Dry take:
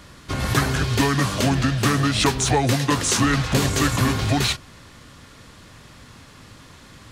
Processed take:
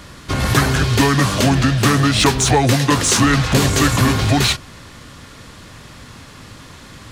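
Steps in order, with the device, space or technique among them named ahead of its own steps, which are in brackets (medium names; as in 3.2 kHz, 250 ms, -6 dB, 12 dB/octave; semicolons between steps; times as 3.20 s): parallel distortion (in parallel at -9 dB: hard clipper -23.5 dBFS, distortion -6 dB); on the sum: trim +4 dB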